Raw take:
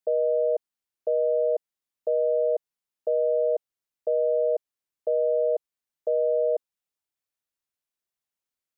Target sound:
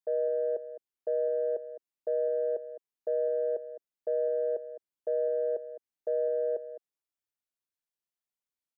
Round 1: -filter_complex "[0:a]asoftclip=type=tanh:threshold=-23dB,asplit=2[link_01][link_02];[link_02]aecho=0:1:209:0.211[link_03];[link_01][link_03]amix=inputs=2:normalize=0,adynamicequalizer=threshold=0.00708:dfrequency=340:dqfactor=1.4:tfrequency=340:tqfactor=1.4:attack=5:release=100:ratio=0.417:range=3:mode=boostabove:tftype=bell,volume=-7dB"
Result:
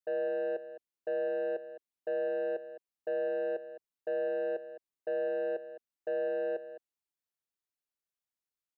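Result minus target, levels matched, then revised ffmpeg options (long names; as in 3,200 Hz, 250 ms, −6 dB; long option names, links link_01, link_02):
soft clipping: distortion +17 dB
-filter_complex "[0:a]asoftclip=type=tanh:threshold=-12dB,asplit=2[link_01][link_02];[link_02]aecho=0:1:209:0.211[link_03];[link_01][link_03]amix=inputs=2:normalize=0,adynamicequalizer=threshold=0.00708:dfrequency=340:dqfactor=1.4:tfrequency=340:tqfactor=1.4:attack=5:release=100:ratio=0.417:range=3:mode=boostabove:tftype=bell,volume=-7dB"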